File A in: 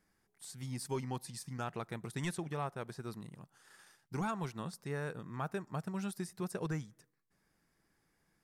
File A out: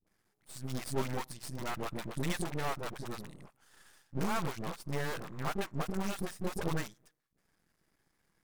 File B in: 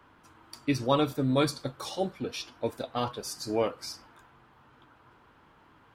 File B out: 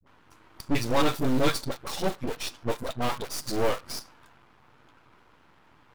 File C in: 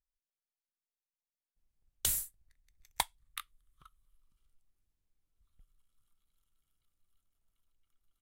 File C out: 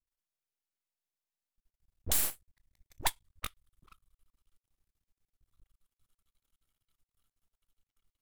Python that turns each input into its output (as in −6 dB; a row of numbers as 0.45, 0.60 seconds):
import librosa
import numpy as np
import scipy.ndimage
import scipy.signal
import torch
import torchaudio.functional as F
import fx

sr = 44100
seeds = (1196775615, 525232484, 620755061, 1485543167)

p1 = fx.quant_dither(x, sr, seeds[0], bits=6, dither='none')
p2 = x + (p1 * 10.0 ** (-4.0 / 20.0))
p3 = fx.dispersion(p2, sr, late='highs', ms=68.0, hz=350.0)
p4 = fx.tube_stage(p3, sr, drive_db=15.0, bias=0.7)
p5 = np.maximum(p4, 0.0)
y = p5 * 10.0 ** (8.0 / 20.0)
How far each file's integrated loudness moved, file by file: +2.5, +1.5, +2.0 LU